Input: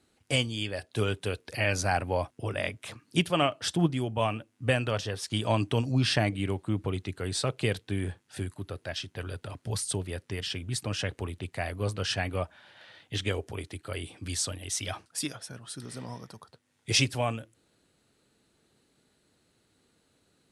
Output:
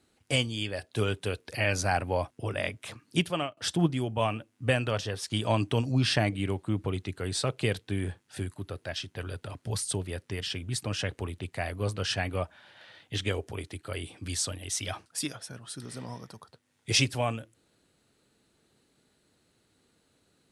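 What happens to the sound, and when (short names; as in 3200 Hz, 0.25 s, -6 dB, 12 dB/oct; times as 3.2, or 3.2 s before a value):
3.04–3.57 fade out equal-power, to -23 dB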